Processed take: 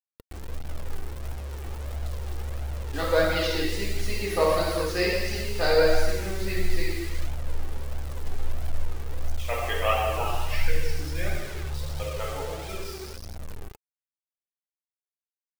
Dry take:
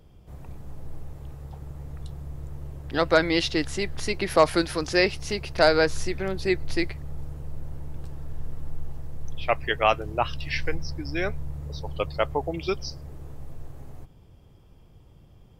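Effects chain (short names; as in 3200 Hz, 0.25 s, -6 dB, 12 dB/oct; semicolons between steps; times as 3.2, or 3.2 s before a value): ending faded out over 4.87 s; 11.35–11.86 negative-ratio compressor -36 dBFS, ratio -0.5; low shelf 76 Hz +3.5 dB; non-linear reverb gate 0.48 s falling, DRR -6.5 dB; bit-crush 5-bit; flange 1.5 Hz, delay 1.2 ms, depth 1.5 ms, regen +45%; gain -6 dB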